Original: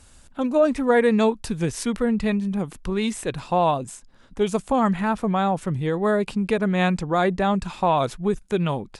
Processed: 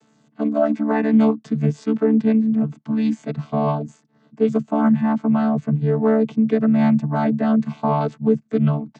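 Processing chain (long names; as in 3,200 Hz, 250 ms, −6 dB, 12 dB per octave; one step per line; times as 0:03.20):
channel vocoder with a chord as carrier bare fifth, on D3
level +4.5 dB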